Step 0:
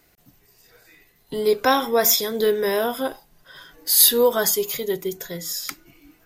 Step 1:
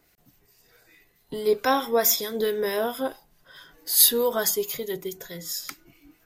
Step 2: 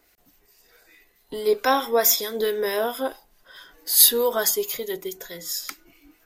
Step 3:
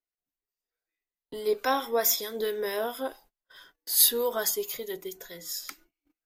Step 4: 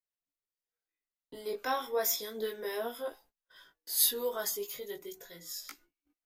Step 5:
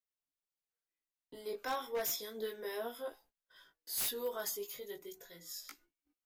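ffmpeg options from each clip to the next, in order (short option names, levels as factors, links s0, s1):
-filter_complex "[0:a]acrossover=split=1400[s0][s1];[s0]aeval=exprs='val(0)*(1-0.5/2+0.5/2*cos(2*PI*4.6*n/s))':c=same[s2];[s1]aeval=exprs='val(0)*(1-0.5/2-0.5/2*cos(2*PI*4.6*n/s))':c=same[s3];[s2][s3]amix=inputs=2:normalize=0,volume=0.794"
-af "equalizer=f=130:w=1.2:g=-13,volume=1.33"
-af "agate=range=0.0316:threshold=0.00398:ratio=16:detection=peak,volume=0.501"
-af "flanger=delay=17:depth=3.2:speed=0.33,volume=0.708"
-af "aeval=exprs='0.0562*(abs(mod(val(0)/0.0562+3,4)-2)-1)':c=same,volume=0.596"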